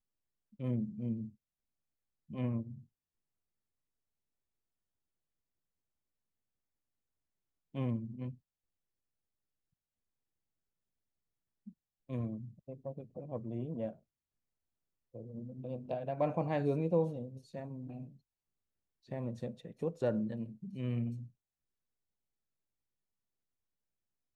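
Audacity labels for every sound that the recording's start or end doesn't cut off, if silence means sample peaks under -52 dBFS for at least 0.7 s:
2.300000	2.820000	sound
7.740000	8.350000	sound
11.670000	13.950000	sound
15.140000	18.160000	sound
19.090000	21.280000	sound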